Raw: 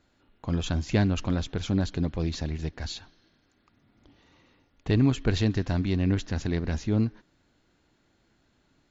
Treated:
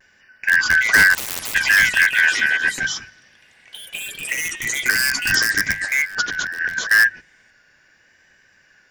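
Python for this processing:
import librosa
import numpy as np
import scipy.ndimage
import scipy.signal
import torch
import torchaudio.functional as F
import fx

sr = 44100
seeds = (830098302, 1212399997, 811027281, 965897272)

p1 = fx.band_shuffle(x, sr, order='2143')
p2 = (np.mod(10.0 ** (17.0 / 20.0) * p1 + 1.0, 2.0) - 1.0) / 10.0 ** (17.0 / 20.0)
p3 = p1 + (p2 * 10.0 ** (-5.5 / 20.0))
p4 = fx.spec_box(p3, sr, start_s=4.91, length_s=0.82, low_hz=320.0, high_hz=4500.0, gain_db=-9)
p5 = fx.over_compress(p4, sr, threshold_db=-29.0, ratio=-0.5, at=(5.14, 6.91))
p6 = fx.hum_notches(p5, sr, base_hz=50, count=3)
p7 = fx.vibrato(p6, sr, rate_hz=0.75, depth_cents=38.0)
p8 = fx.echo_pitch(p7, sr, ms=433, semitones=4, count=3, db_per_echo=-6.0)
p9 = fx.spectral_comp(p8, sr, ratio=10.0, at=(1.13, 1.54), fade=0.02)
y = p9 * 10.0 ** (7.5 / 20.0)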